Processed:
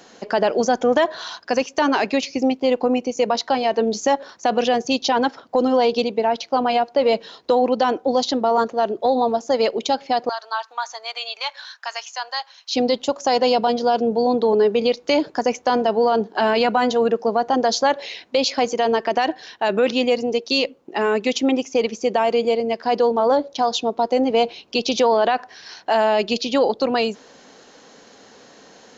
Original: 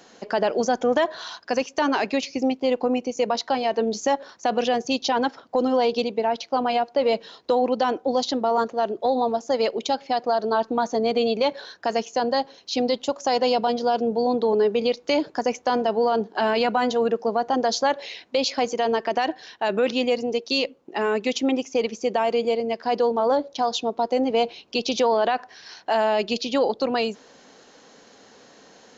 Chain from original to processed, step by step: 10.29–12.75 HPF 1000 Hz 24 dB/oct; gain +3.5 dB

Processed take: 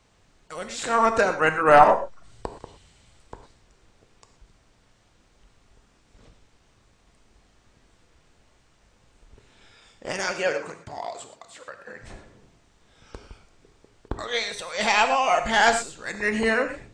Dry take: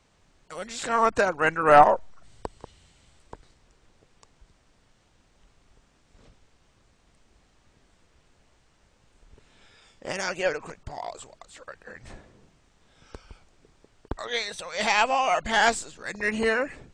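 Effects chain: 10.31–12.03 HPF 120 Hz 12 dB/oct; non-linear reverb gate 0.14 s flat, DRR 7 dB; gain +1.5 dB

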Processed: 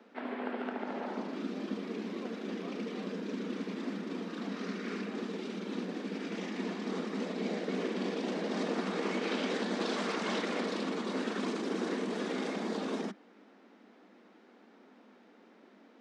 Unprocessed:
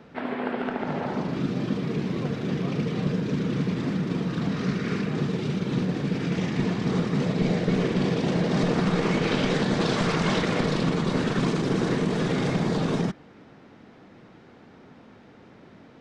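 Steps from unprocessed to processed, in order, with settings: steep high-pass 200 Hz 72 dB/oct; gain -8 dB

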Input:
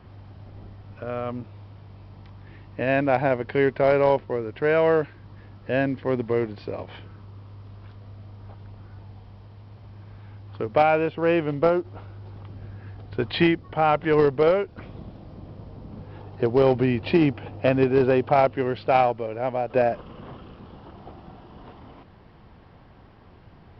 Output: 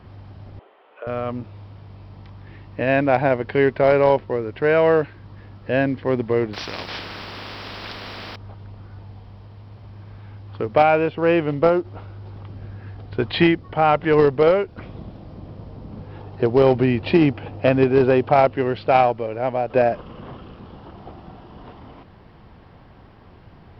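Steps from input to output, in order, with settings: 0.59–1.07 elliptic band-pass 420–3100 Hz, stop band 50 dB; 6.53–8.36 spectral compressor 4:1; gain +3.5 dB

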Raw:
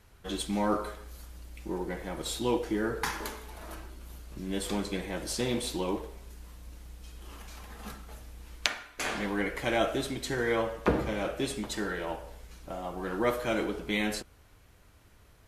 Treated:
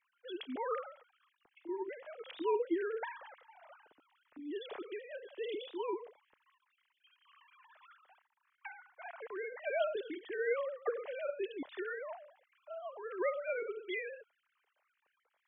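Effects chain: sine-wave speech; 8.22–9.59 LPF 1600 Hz 12 dB/oct; gain -7.5 dB

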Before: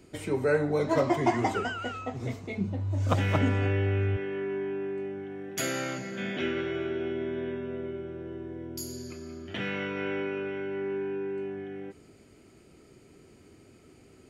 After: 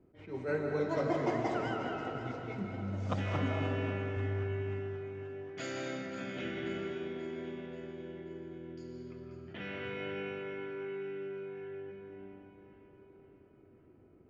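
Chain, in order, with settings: LPF 6600 Hz 24 dB/oct; low-pass opened by the level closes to 940 Hz, open at -25.5 dBFS; echo with dull and thin repeats by turns 0.267 s, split 800 Hz, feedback 73%, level -9 dB; digital reverb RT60 2.6 s, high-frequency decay 0.45×, pre-delay 0.115 s, DRR 2 dB; attack slew limiter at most 170 dB/s; gain -9 dB

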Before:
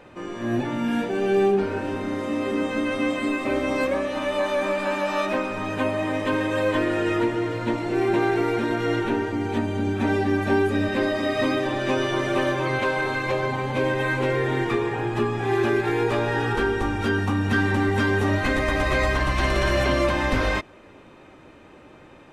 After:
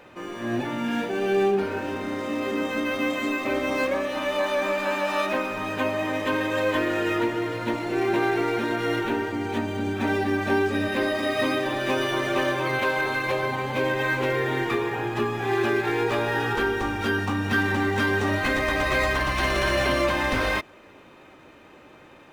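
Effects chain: tilt +1.5 dB/oct; decimation joined by straight lines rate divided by 3×

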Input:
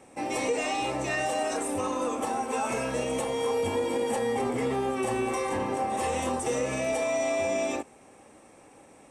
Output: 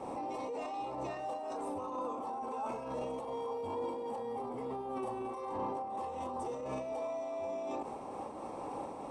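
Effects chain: negative-ratio compressor -31 dBFS; EQ curve 110 Hz 0 dB, 650 Hz +5 dB, 1000 Hz +10 dB, 1700 Hz -9 dB, 4600 Hz -3 dB, 6900 Hz -12 dB; limiter -36.5 dBFS, peak gain reduction 22 dB; 4.29–5.41 bell 10000 Hz +8.5 dB 0.22 oct; noise-modulated level, depth 55%; gain +7.5 dB

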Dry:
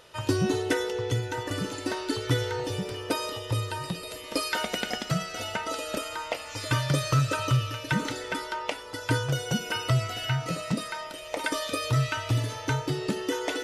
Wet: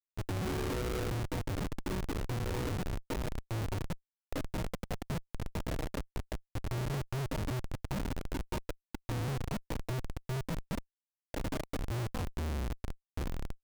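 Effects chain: tape stop at the end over 1.79 s; compressor 4:1, threshold -26 dBFS, peak gain reduction 7 dB; Chebyshev band-stop 1100–6700 Hz, order 4; Schmitt trigger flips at -30 dBFS

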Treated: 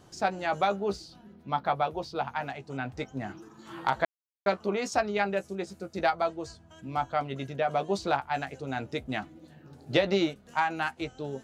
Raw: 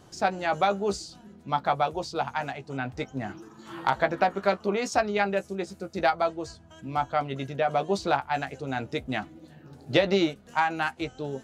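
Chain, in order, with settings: 0.76–2.5 bell 7500 Hz -11.5 dB 0.74 oct; 4.05–4.46 mute; gain -2.5 dB

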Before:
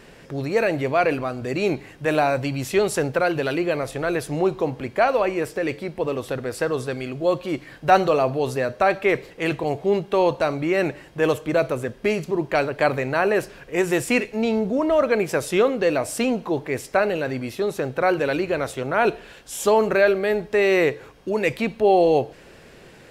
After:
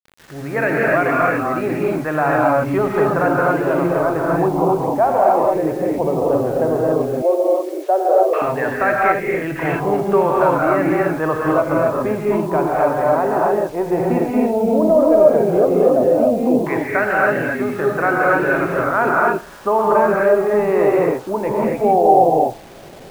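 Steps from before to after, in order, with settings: AGC gain up to 10 dB; bell 470 Hz -5.5 dB 0.23 oct; non-linear reverb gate 0.3 s rising, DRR -4.5 dB; LFO low-pass saw down 0.12 Hz 570–1800 Hz; in parallel at +1 dB: limiter -2 dBFS, peak gain reduction 10 dB; on the sum: bit-crush 5-bit; 7.22–8.42 steep high-pass 330 Hz 96 dB/oct; 9.12–9.56 bell 1300 Hz -9 dB 1.4 oct; gain -12.5 dB

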